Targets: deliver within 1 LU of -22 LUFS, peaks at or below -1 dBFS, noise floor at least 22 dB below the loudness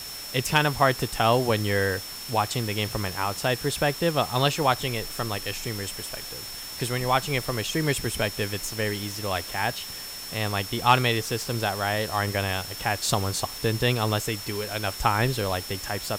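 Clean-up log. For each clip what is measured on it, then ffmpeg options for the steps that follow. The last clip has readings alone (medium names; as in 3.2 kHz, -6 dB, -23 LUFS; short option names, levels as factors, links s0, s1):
steady tone 5.4 kHz; tone level -38 dBFS; noise floor -37 dBFS; noise floor target -48 dBFS; loudness -26.0 LUFS; peak level -7.0 dBFS; loudness target -22.0 LUFS
-> -af "bandreject=f=5400:w=30"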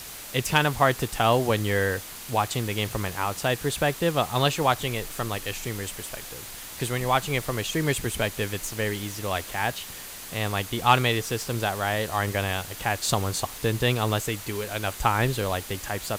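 steady tone not found; noise floor -40 dBFS; noise floor target -48 dBFS
-> -af "afftdn=nr=8:nf=-40"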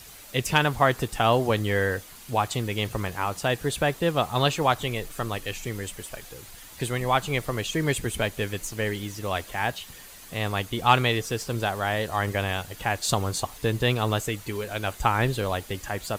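noise floor -46 dBFS; noise floor target -49 dBFS
-> -af "afftdn=nr=6:nf=-46"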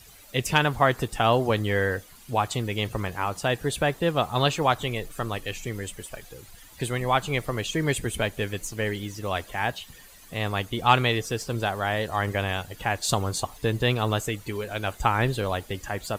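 noise floor -50 dBFS; loudness -26.5 LUFS; peak level -7.0 dBFS; loudness target -22.0 LUFS
-> -af "volume=1.68"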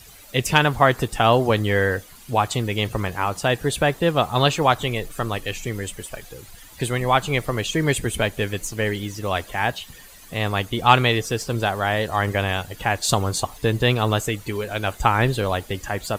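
loudness -22.0 LUFS; peak level -2.0 dBFS; noise floor -45 dBFS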